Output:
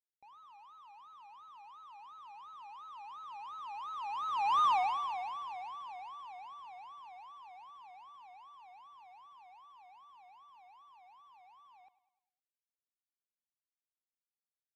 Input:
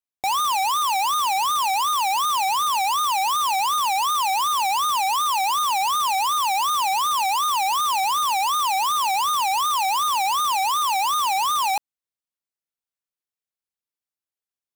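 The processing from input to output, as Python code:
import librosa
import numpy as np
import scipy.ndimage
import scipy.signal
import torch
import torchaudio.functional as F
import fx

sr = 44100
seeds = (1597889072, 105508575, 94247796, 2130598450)

p1 = fx.doppler_pass(x, sr, speed_mps=18, closest_m=2.4, pass_at_s=4.63)
p2 = scipy.signal.sosfilt(scipy.signal.butter(2, 2100.0, 'lowpass', fs=sr, output='sos'), p1)
p3 = p2 + fx.echo_feedback(p2, sr, ms=102, feedback_pct=51, wet_db=-16.5, dry=0)
y = p3 * librosa.db_to_amplitude(-4.0)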